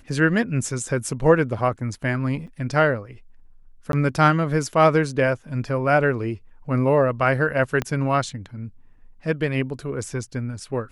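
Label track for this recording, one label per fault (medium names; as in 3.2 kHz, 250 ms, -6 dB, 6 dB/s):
2.470000	2.480000	dropout 5.9 ms
3.920000	3.930000	dropout 12 ms
7.820000	7.820000	pop -11 dBFS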